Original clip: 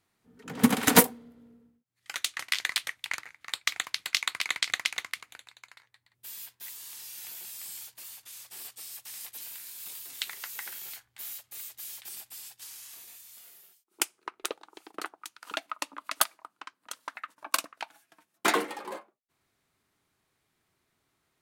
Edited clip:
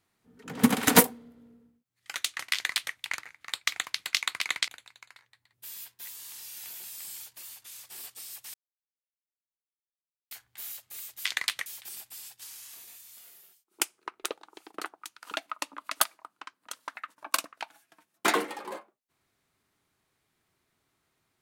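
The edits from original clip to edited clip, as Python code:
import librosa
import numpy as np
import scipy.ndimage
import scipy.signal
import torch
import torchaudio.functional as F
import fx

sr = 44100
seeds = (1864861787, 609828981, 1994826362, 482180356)

y = fx.edit(x, sr, fx.duplicate(start_s=2.53, length_s=0.41, to_s=11.86),
    fx.cut(start_s=4.68, length_s=0.61),
    fx.silence(start_s=9.15, length_s=1.77), tone=tone)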